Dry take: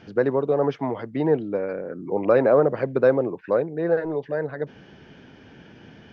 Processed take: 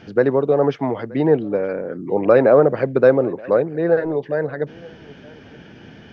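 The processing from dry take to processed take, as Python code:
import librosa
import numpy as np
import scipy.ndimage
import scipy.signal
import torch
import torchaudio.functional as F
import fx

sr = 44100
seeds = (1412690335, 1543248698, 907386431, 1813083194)

p1 = fx.peak_eq(x, sr, hz=1000.0, db=-3.0, octaves=0.28)
p2 = p1 + fx.echo_single(p1, sr, ms=925, db=-23.5, dry=0)
y = p2 * librosa.db_to_amplitude(5.0)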